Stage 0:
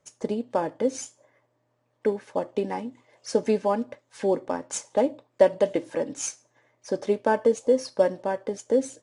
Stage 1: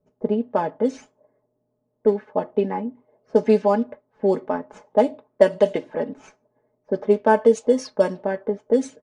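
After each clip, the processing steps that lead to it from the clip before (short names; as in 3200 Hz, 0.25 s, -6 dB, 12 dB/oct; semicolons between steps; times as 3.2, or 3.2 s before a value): low-pass opened by the level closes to 450 Hz, open at -16.5 dBFS; comb 4.7 ms, depth 63%; gain +2.5 dB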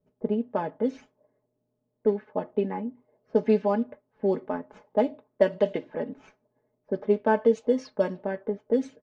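LPF 3600 Hz 12 dB/oct; bell 800 Hz -4 dB 2.2 oct; gain -3 dB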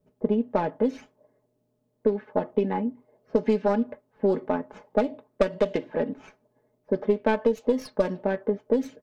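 tracing distortion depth 0.19 ms; compressor 6:1, threshold -23 dBFS, peak gain reduction 9.5 dB; gain +5 dB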